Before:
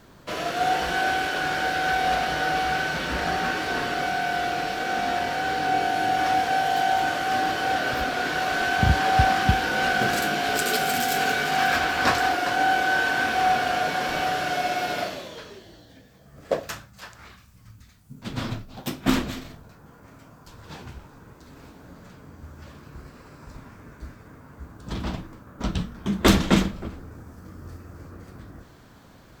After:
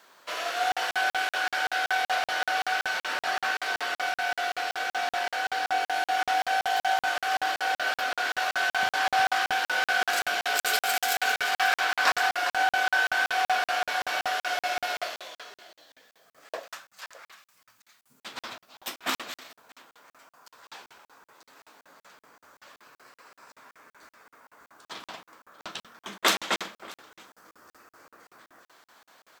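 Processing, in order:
high-pass filter 780 Hz 12 dB per octave
on a send: single-tap delay 633 ms −22.5 dB
on the sum: regular buffer underruns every 0.19 s, samples 2,048, zero, from 0:00.72

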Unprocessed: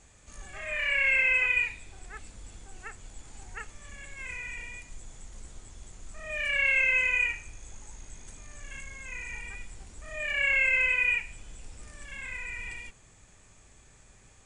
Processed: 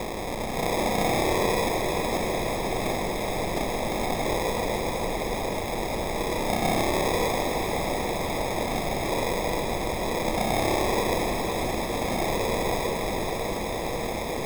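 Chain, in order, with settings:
compressor on every frequency bin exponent 0.2
high-shelf EQ 2,200 Hz −12 dB
decimation without filtering 30×
feedback delay with all-pass diffusion 487 ms, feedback 73%, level −6 dB

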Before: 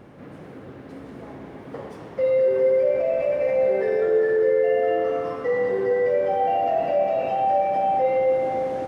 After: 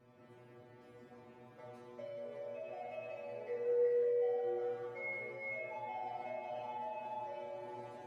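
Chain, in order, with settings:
change of speed 1.1×
stiff-string resonator 120 Hz, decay 0.55 s, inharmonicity 0.002
level −3.5 dB

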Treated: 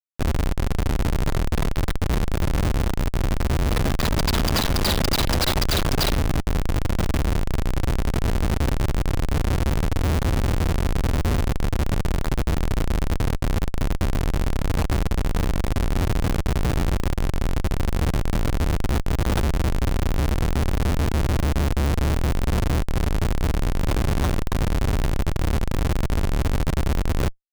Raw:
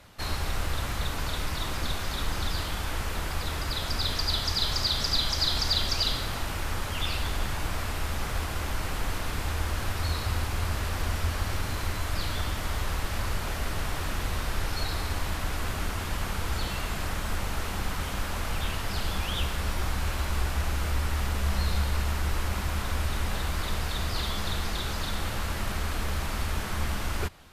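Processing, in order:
in parallel at −2 dB: brickwall limiter −21.5 dBFS, peak gain reduction 7.5 dB
on the sum: comparator with hysteresis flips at −22 dBFS
level +4.5 dB

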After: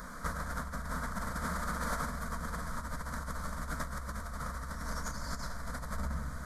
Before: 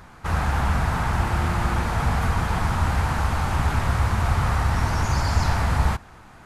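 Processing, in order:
0:01.20–0:02.11: low-shelf EQ 180 Hz −4 dB
convolution reverb RT60 0.90 s, pre-delay 75 ms, DRR 11 dB
compressor whose output falls as the input rises −29 dBFS, ratio −1
soft clipping −17.5 dBFS, distortion −23 dB
high-shelf EQ 4,100 Hz +6 dB
phaser with its sweep stopped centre 540 Hz, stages 8
level −4 dB

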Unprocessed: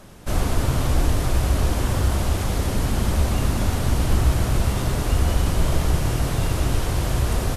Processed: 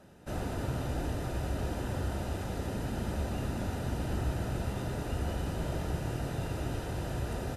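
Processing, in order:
high-shelf EQ 3,000 Hz −8 dB
notch comb filter 1,100 Hz
level −8.5 dB

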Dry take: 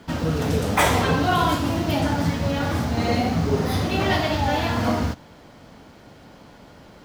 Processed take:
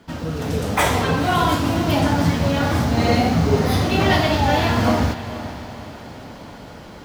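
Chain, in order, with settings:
automatic gain control gain up to 11 dB
feedback delay with all-pass diffusion 495 ms, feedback 47%, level −13 dB
level −3.5 dB

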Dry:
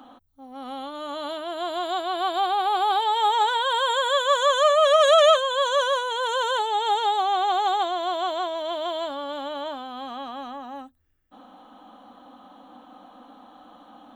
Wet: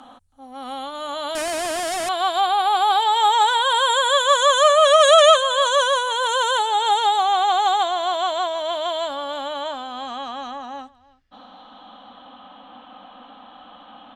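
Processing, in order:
parametric band 340 Hz −8.5 dB 0.84 octaves
0:01.35–0:02.09: comparator with hysteresis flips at −44.5 dBFS
single-tap delay 322 ms −22 dB
low-pass filter sweep 9,400 Hz → 3,000 Hz, 0:09.49–0:12.47
level +5 dB

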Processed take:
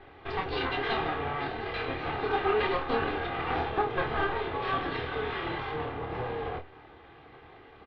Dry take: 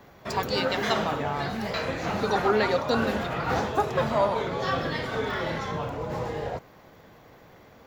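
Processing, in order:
lower of the sound and its delayed copy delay 2.5 ms
Butterworth low-pass 3,700 Hz 36 dB per octave
notch filter 510 Hz, Q 17
in parallel at −1 dB: downward compressor, threshold −41 dBFS, peak gain reduction 20.5 dB
on the sum: flanger 0.64 Hz, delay 9.9 ms, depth 5.1 ms, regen +73%
on a send: ambience of single reflections 26 ms −5.5 dB, 50 ms −14.5 dB

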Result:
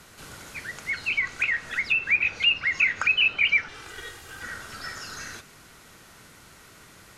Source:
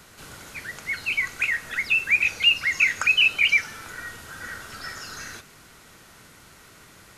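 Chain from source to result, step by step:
0:03.68–0:04.43: lower of the sound and its delayed copy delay 2.5 ms
treble cut that deepens with the level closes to 2,900 Hz, closed at −18.5 dBFS
MP3 128 kbit/s 48,000 Hz

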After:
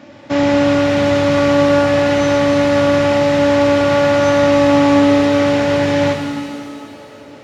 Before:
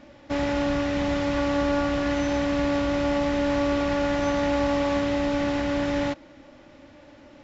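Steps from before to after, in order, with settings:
high-pass filter 89 Hz 24 dB per octave
reverb with rising layers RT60 2.3 s, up +7 semitones, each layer −8 dB, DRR 3.5 dB
level +9 dB

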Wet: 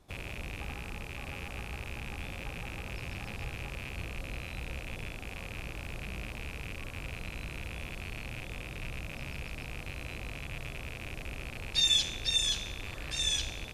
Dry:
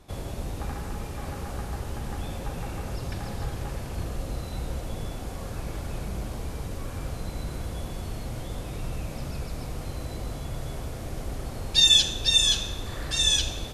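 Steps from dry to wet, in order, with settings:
loose part that buzzes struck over −40 dBFS, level −21 dBFS
level −8.5 dB

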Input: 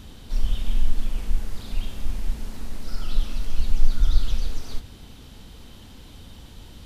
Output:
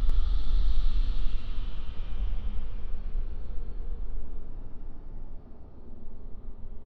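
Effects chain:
source passing by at 0:01.69, 23 m/s, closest 9.6 metres
low-pass that shuts in the quiet parts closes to 460 Hz, open at −19 dBFS
extreme stretch with random phases 9.6×, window 0.25 s, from 0:04.15
single-tap delay 95 ms −3 dB
level +7 dB

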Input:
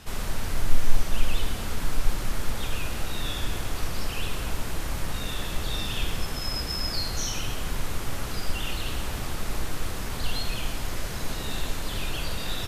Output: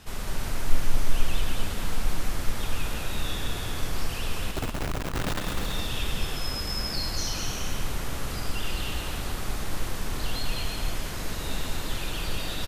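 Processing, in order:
0:04.51–0:05.41: comparator with hysteresis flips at −35 dBFS
bouncing-ball delay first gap 200 ms, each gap 0.65×, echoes 5
level −2.5 dB

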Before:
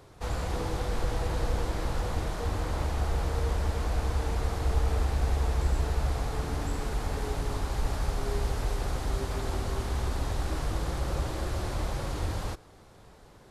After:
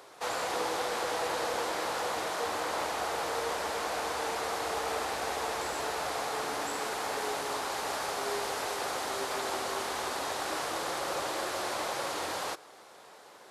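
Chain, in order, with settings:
high-pass filter 530 Hz 12 dB per octave
level +6 dB

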